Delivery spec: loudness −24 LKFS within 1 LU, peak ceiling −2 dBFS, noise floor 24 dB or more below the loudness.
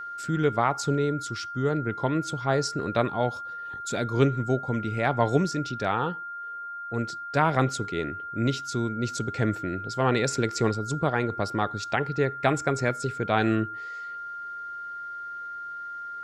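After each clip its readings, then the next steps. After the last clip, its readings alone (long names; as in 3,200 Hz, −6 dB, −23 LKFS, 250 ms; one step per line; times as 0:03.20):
interfering tone 1,400 Hz; level of the tone −34 dBFS; integrated loudness −27.5 LKFS; sample peak −7.0 dBFS; target loudness −24.0 LKFS
→ notch filter 1,400 Hz, Q 30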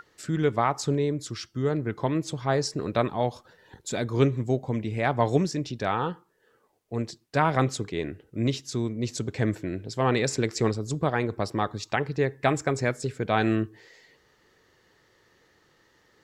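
interfering tone none found; integrated loudness −27.5 LKFS; sample peak −7.5 dBFS; target loudness −24.0 LKFS
→ level +3.5 dB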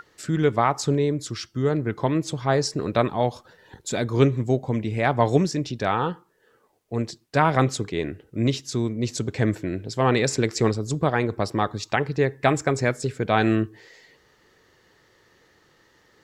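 integrated loudness −24.0 LKFS; sample peak −4.0 dBFS; background noise floor −61 dBFS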